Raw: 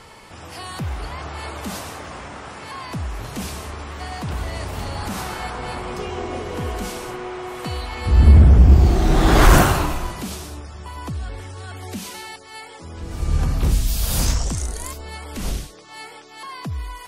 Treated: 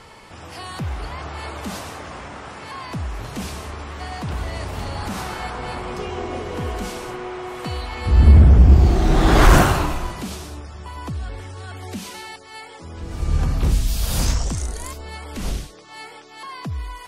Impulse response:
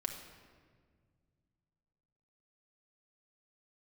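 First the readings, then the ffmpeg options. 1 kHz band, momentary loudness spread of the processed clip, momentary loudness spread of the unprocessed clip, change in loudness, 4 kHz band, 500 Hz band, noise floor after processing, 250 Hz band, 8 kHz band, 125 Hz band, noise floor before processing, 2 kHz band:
0.0 dB, 22 LU, 22 LU, 0.0 dB, -1.0 dB, 0.0 dB, -42 dBFS, 0.0 dB, -2.5 dB, 0.0 dB, -42 dBFS, 0.0 dB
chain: -af "highshelf=f=9.3k:g=-6.5"

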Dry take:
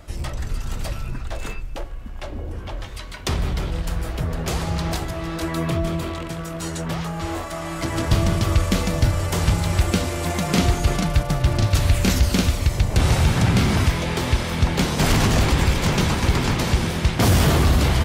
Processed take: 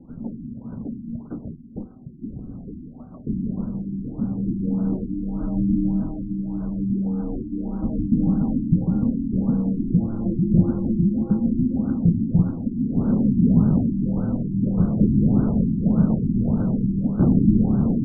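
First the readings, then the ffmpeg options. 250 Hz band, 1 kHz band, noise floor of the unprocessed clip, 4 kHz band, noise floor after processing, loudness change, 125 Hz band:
+6.0 dB, -16.0 dB, -32 dBFS, under -40 dB, -40 dBFS, 0.0 dB, -2.5 dB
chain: -af "lowshelf=f=370:g=8.5,highpass=f=170:t=q:w=0.5412,highpass=f=170:t=q:w=1.307,lowpass=f=3.1k:t=q:w=0.5176,lowpass=f=3.1k:t=q:w=0.7071,lowpass=f=3.1k:t=q:w=1.932,afreqshift=-360,equalizer=f=250:t=o:w=1:g=10,equalizer=f=1k:t=o:w=1:g=-7,equalizer=f=2k:t=o:w=1:g=-6,afftfilt=real='re*lt(b*sr/1024,350*pow(1600/350,0.5+0.5*sin(2*PI*1.7*pts/sr)))':imag='im*lt(b*sr/1024,350*pow(1600/350,0.5+0.5*sin(2*PI*1.7*pts/sr)))':win_size=1024:overlap=0.75,volume=-4.5dB"

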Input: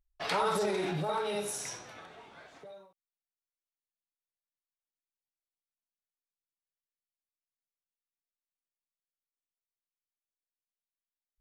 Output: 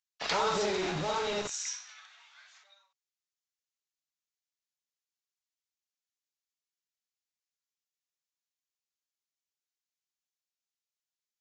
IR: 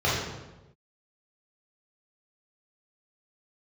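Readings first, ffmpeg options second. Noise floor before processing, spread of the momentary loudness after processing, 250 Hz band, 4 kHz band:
under -85 dBFS, 9 LU, -1.0 dB, +4.5 dB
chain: -filter_complex "[0:a]bass=f=250:g=-3,treble=f=4k:g=7,acrossover=split=1200[a][b];[a]acrusher=bits=5:mix=0:aa=0.000001[c];[c][b]amix=inputs=2:normalize=0,aresample=16000,aresample=44100"

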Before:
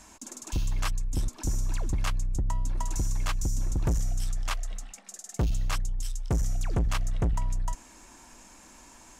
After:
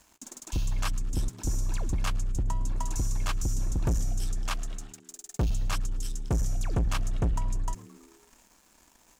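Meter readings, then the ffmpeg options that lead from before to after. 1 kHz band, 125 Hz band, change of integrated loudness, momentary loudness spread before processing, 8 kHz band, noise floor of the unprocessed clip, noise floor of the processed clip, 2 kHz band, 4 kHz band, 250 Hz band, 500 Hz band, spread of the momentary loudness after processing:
-0.5 dB, -0.5 dB, -0.5 dB, 21 LU, -0.5 dB, -52 dBFS, -62 dBFS, -1.0 dB, -0.5 dB, +0.5 dB, 0.0 dB, 10 LU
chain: -filter_complex "[0:a]bandreject=f=2k:w=13,aeval=exprs='sgn(val(0))*max(abs(val(0))-0.00282,0)':c=same,asplit=2[a][b];[b]asplit=5[c][d][e][f][g];[c]adelay=109,afreqshift=76,volume=-22.5dB[h];[d]adelay=218,afreqshift=152,volume=-26.4dB[i];[e]adelay=327,afreqshift=228,volume=-30.3dB[j];[f]adelay=436,afreqshift=304,volume=-34.1dB[k];[g]adelay=545,afreqshift=380,volume=-38dB[l];[h][i][j][k][l]amix=inputs=5:normalize=0[m];[a][m]amix=inputs=2:normalize=0"

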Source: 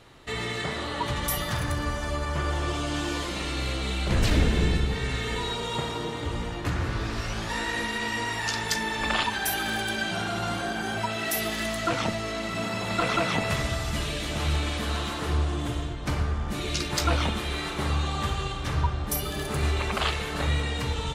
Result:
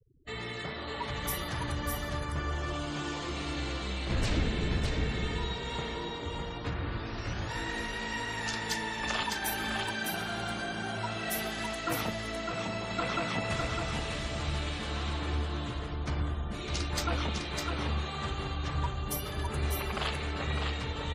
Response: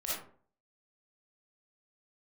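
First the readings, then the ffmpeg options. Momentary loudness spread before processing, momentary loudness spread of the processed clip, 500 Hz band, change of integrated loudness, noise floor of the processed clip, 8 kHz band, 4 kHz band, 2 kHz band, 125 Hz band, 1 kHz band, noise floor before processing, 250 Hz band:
5 LU, 5 LU, -5.5 dB, -5.5 dB, -38 dBFS, -6.5 dB, -5.5 dB, -5.5 dB, -5.5 dB, -5.5 dB, -33 dBFS, -5.5 dB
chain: -af "afftfilt=real='re*gte(hypot(re,im),0.01)':imag='im*gte(hypot(re,im),0.01)':win_size=1024:overlap=0.75,aecho=1:1:605:0.631,volume=-7dB" -ar 48000 -c:a aac -b:a 48k

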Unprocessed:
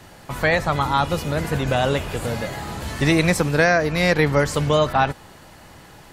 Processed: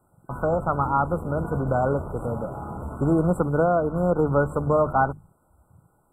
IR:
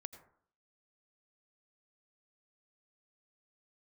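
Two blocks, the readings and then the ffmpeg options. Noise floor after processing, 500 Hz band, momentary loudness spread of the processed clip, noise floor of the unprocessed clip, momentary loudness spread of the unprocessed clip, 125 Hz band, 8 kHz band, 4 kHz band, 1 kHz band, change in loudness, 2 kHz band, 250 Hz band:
-65 dBFS, -2.0 dB, 10 LU, -46 dBFS, 10 LU, -3.0 dB, under -20 dB, under -40 dB, -2.0 dB, -3.5 dB, -13.0 dB, -2.5 dB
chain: -af "bandreject=f=50:t=h:w=6,bandreject=f=100:t=h:w=6,bandreject=f=150:t=h:w=6,afwtdn=0.0282,afftfilt=real='re*(1-between(b*sr/4096,1500,7400))':imag='im*(1-between(b*sr/4096,1500,7400))':win_size=4096:overlap=0.75,volume=-2dB"

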